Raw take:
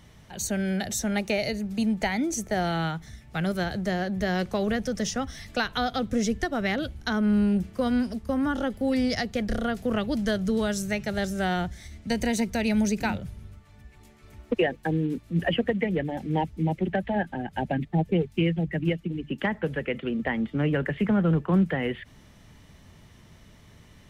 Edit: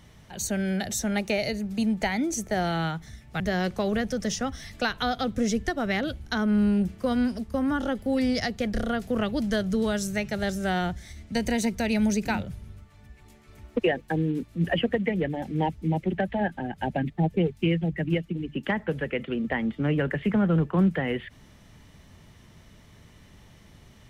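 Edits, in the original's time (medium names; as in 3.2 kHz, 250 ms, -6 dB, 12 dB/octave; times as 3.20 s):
3.40–4.15 s: delete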